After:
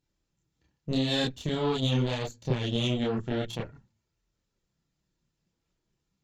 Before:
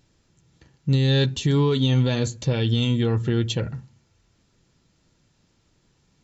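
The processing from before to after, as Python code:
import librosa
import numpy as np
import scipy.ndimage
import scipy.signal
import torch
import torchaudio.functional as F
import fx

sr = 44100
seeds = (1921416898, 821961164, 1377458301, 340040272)

y = fx.cheby_harmonics(x, sr, harmonics=(3, 4, 7), levels_db=(-14, -28, -31), full_scale_db=-9.0)
y = fx.chorus_voices(y, sr, voices=6, hz=0.73, base_ms=29, depth_ms=3.6, mix_pct=55)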